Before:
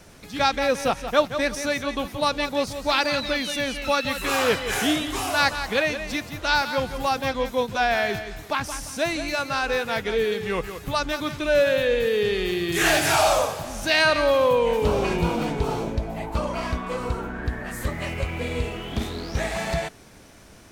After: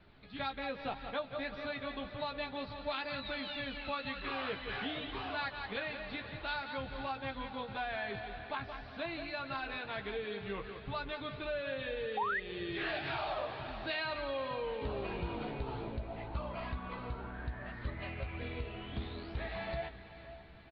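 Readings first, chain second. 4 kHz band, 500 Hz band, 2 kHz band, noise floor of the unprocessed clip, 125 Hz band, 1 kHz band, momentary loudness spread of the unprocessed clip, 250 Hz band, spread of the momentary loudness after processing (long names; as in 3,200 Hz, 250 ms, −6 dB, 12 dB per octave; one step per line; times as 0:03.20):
−15.5 dB, −17.0 dB, −14.5 dB, −45 dBFS, −12.5 dB, −14.5 dB, 10 LU, −15.0 dB, 6 LU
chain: Butterworth low-pass 4,300 Hz 72 dB per octave
parametric band 110 Hz +6 dB 0.27 octaves
double-tracking delay 15 ms −6.5 dB
on a send: feedback delay with all-pass diffusion 478 ms, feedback 50%, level −14 dB
on the sum: sound drawn into the spectrogram rise, 0:12.17–0:12.40, 760–2,100 Hz −12 dBFS
notch filter 510 Hz, Q 12
downward compressor 3 to 1, threshold −22 dBFS, peak gain reduction 9 dB
flanger 1.9 Hz, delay 0.5 ms, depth 1.3 ms, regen +80%
level −8.5 dB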